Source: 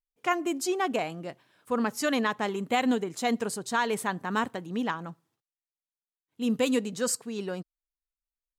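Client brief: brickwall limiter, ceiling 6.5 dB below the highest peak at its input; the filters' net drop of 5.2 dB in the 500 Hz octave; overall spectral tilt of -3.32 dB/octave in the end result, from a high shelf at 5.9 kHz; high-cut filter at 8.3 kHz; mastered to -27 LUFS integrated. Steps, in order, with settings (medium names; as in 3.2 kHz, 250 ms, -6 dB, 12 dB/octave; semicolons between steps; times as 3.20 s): low-pass 8.3 kHz; peaking EQ 500 Hz -6.5 dB; treble shelf 5.9 kHz +7.5 dB; trim +6 dB; peak limiter -15.5 dBFS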